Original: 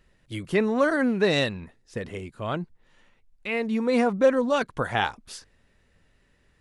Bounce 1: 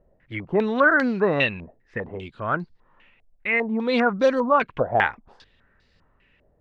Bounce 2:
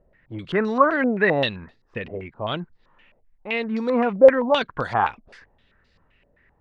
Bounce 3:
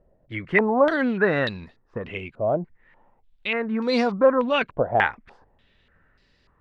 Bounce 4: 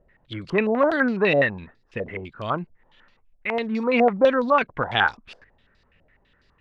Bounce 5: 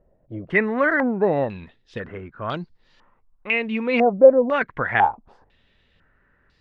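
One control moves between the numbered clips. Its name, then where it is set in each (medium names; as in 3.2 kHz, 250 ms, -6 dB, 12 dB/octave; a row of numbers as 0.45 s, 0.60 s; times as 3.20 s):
step-sequenced low-pass, rate: 5 Hz, 7.7 Hz, 3.4 Hz, 12 Hz, 2 Hz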